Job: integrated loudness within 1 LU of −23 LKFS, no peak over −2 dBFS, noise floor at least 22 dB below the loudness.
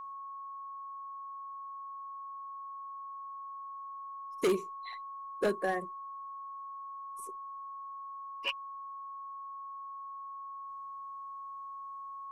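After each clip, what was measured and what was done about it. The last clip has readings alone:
share of clipped samples 0.4%; peaks flattened at −23.5 dBFS; interfering tone 1,100 Hz; level of the tone −41 dBFS; integrated loudness −40.0 LKFS; sample peak −23.5 dBFS; target loudness −23.0 LKFS
→ clipped peaks rebuilt −23.5 dBFS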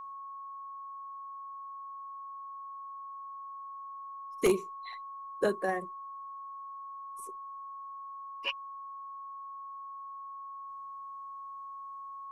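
share of clipped samples 0.0%; interfering tone 1,100 Hz; level of the tone −41 dBFS
→ notch filter 1,100 Hz, Q 30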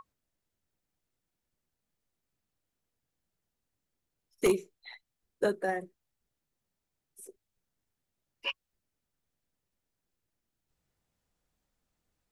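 interfering tone none found; integrated loudness −32.5 LKFS; sample peak −14.0 dBFS; target loudness −23.0 LKFS
→ level +9.5 dB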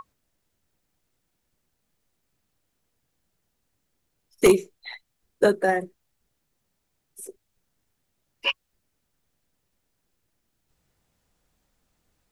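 integrated loudness −23.0 LKFS; sample peak −4.5 dBFS; background noise floor −77 dBFS

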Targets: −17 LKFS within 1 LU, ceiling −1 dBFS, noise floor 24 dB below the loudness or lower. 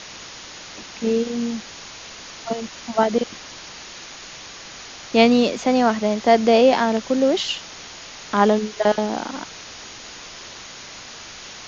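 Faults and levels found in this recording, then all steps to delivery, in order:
background noise floor −39 dBFS; target noise floor −44 dBFS; integrated loudness −20.0 LKFS; sample peak −2.0 dBFS; target loudness −17.0 LKFS
→ noise reduction from a noise print 6 dB
level +3 dB
brickwall limiter −1 dBFS

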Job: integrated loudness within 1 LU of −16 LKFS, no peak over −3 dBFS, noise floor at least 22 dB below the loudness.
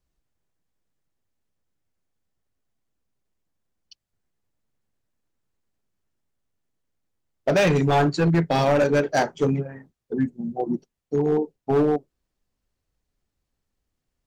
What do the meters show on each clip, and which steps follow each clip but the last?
share of clipped samples 1.2%; peaks flattened at −14.5 dBFS; integrated loudness −22.5 LKFS; sample peak −14.5 dBFS; target loudness −16.0 LKFS
→ clipped peaks rebuilt −14.5 dBFS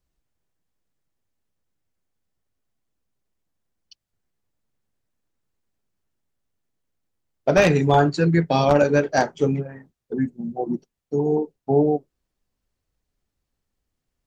share of clipped samples 0.0%; integrated loudness −21.0 LKFS; sample peak −5.5 dBFS; target loudness −16.0 LKFS
→ level +5 dB
brickwall limiter −3 dBFS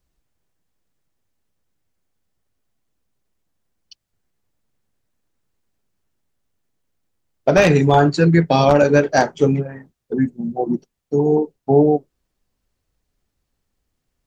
integrated loudness −16.5 LKFS; sample peak −3.0 dBFS; background noise floor −77 dBFS

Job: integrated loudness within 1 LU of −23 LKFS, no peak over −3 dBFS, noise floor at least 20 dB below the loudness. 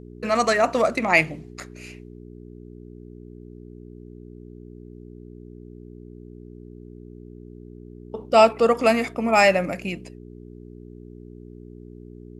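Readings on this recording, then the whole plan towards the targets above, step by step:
mains hum 60 Hz; hum harmonics up to 420 Hz; level of the hum −40 dBFS; integrated loudness −20.0 LKFS; sample peak −3.5 dBFS; target loudness −23.0 LKFS
→ hum removal 60 Hz, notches 7
level −3 dB

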